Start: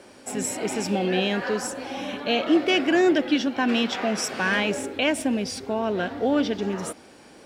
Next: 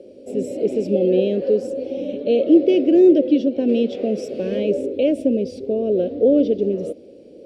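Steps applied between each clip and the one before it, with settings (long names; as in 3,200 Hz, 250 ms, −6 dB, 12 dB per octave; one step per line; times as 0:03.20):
drawn EQ curve 150 Hz 0 dB, 550 Hz +12 dB, 880 Hz −26 dB, 1,700 Hz −25 dB, 2,600 Hz −10 dB, 4,500 Hz −11 dB, 6,800 Hz −17 dB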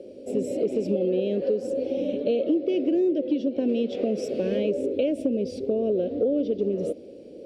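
downward compressor 6 to 1, threshold −21 dBFS, peak gain reduction 12.5 dB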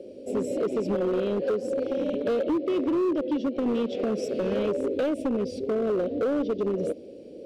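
hard clipping −21.5 dBFS, distortion −14 dB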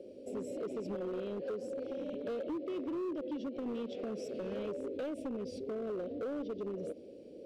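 brickwall limiter −26.5 dBFS, peak gain reduction 5 dB
level −7.5 dB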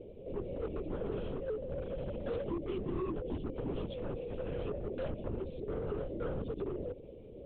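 linear-prediction vocoder at 8 kHz whisper
level +1 dB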